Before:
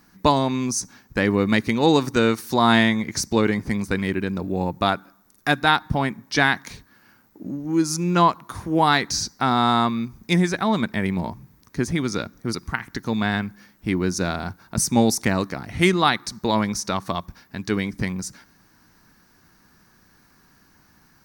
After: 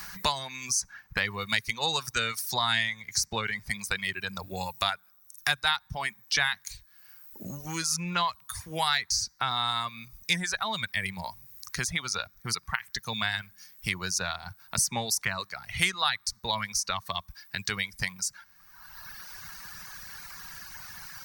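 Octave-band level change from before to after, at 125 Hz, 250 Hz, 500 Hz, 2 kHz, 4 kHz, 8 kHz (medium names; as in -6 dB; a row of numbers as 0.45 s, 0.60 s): -13.5 dB, -20.0 dB, -16.0 dB, -4.0 dB, -0.5 dB, -1.0 dB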